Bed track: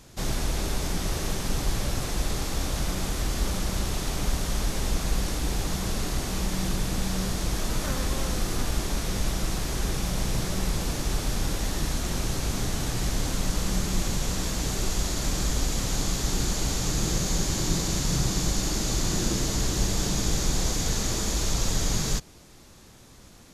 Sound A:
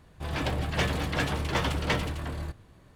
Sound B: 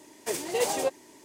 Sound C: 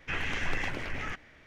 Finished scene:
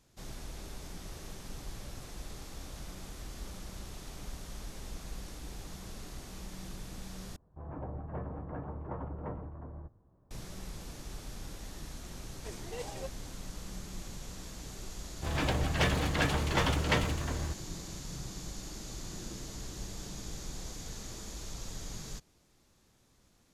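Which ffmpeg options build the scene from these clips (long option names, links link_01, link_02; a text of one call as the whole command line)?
ffmpeg -i bed.wav -i cue0.wav -i cue1.wav -filter_complex "[1:a]asplit=2[link_01][link_02];[0:a]volume=-16.5dB[link_03];[link_01]lowpass=frequency=1100:width=0.5412,lowpass=frequency=1100:width=1.3066[link_04];[2:a]lowpass=7000[link_05];[link_03]asplit=2[link_06][link_07];[link_06]atrim=end=7.364[link_08];[link_04]atrim=end=2.95,asetpts=PTS-STARTPTS,volume=-10.5dB[link_09];[link_07]atrim=start=10.306[link_10];[link_05]atrim=end=1.24,asetpts=PTS-STARTPTS,volume=-15dB,afade=type=in:duration=0.004:curve=hsin,afade=type=out:start_time=1.236:duration=0.004:curve=hsin,adelay=12180[link_11];[link_02]atrim=end=2.95,asetpts=PTS-STARTPTS,volume=-1dB,afade=type=in:duration=0.004:curve=hsin,afade=type=out:start_time=2.946:duration=0.004:curve=hsin,adelay=15020[link_12];[link_08][link_09]acrossfade=duration=0.004:curve1=hsin:curve2=hsin[link_13];[link_13][link_10]acrossfade=duration=0.004:curve1=hsin:curve2=hsin[link_14];[link_14][link_11][link_12]amix=inputs=3:normalize=0" out.wav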